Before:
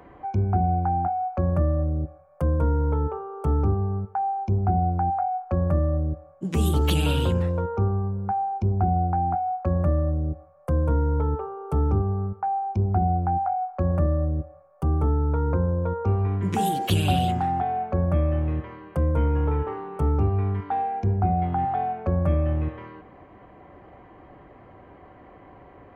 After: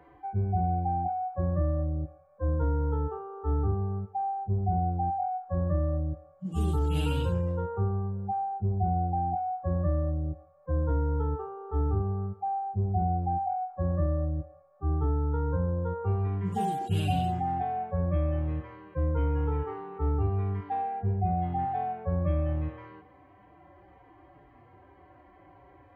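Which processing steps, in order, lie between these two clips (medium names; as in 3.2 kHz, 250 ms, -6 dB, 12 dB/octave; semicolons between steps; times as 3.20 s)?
harmonic-percussive separation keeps harmonic; trim -5 dB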